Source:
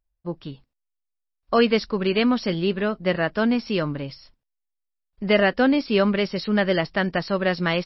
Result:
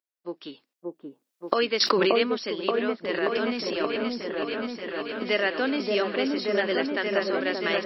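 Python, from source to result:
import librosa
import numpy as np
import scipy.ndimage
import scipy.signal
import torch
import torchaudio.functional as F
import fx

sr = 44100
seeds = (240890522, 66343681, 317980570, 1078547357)

p1 = fx.recorder_agc(x, sr, target_db=-15.0, rise_db_per_s=13.0, max_gain_db=30)
p2 = scipy.signal.sosfilt(scipy.signal.butter(4, 310.0, 'highpass', fs=sr, output='sos'), p1)
p3 = fx.peak_eq(p2, sr, hz=730.0, db=-6.5, octaves=1.7)
p4 = fx.transient(p3, sr, attack_db=-5, sustain_db=9, at=(3.02, 3.86))
p5 = p4 + fx.echo_opening(p4, sr, ms=579, hz=750, octaves=1, feedback_pct=70, wet_db=0, dry=0)
p6 = fx.env_flatten(p5, sr, amount_pct=100, at=(1.8, 2.23))
y = F.gain(torch.from_numpy(p6), -2.0).numpy()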